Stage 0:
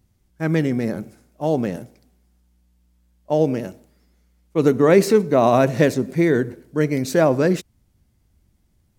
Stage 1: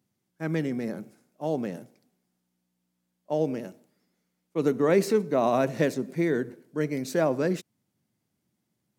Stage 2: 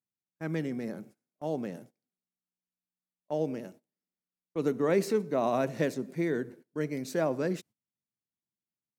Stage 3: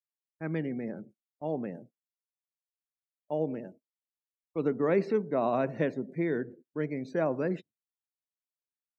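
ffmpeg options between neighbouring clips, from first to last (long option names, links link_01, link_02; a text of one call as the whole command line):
ffmpeg -i in.wav -af "highpass=frequency=140:width=0.5412,highpass=frequency=140:width=1.3066,volume=-8dB" out.wav
ffmpeg -i in.wav -af "agate=range=-20dB:threshold=-47dB:ratio=16:detection=peak,volume=-4.5dB" out.wav
ffmpeg -i in.wav -filter_complex "[0:a]acrossover=split=3500[link_01][link_02];[link_02]acompressor=threshold=-55dB:ratio=4:attack=1:release=60[link_03];[link_01][link_03]amix=inputs=2:normalize=0,afftdn=noise_reduction=25:noise_floor=-51" out.wav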